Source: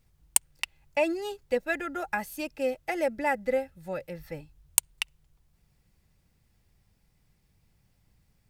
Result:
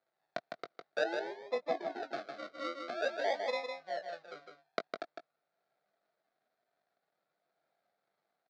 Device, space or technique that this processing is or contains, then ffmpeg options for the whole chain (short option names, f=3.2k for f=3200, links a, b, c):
circuit-bent sampling toy: -filter_complex "[0:a]acrusher=samples=41:mix=1:aa=0.000001:lfo=1:lforange=24.6:lforate=0.49,highpass=f=120:w=0.5412,highpass=f=120:w=1.3066,highpass=600,equalizer=f=680:t=q:w=4:g=10,equalizer=f=1k:t=q:w=4:g=-9,equalizer=f=1.4k:t=q:w=4:g=5,equalizer=f=2.9k:t=q:w=4:g=-9,equalizer=f=4.2k:t=q:w=4:g=4,lowpass=f=4.5k:w=0.5412,lowpass=f=4.5k:w=1.3066,asplit=2[a][b];[b]adelay=20,volume=-11dB[c];[a][c]amix=inputs=2:normalize=0,asettb=1/sr,asplit=3[d][e][f];[d]atrim=end=1.044[g];[e]atrim=start=1.04:end=2.03,asetpts=PTS-STARTPTS,afade=t=in:d=0.004:c=qsin,afade=t=out:st=0.986:d=0.004:c=qsin,tiltshelf=f=900:g=5.5[h];[f]atrim=start=2.026[i];[g][h]acrossfade=d=0.004:c1=hsin:c2=qsin[j];[j][i]acrossfade=d=0.004:c1=qsin:c2=hsin,aecho=1:1:156:0.531,volume=-6.5dB"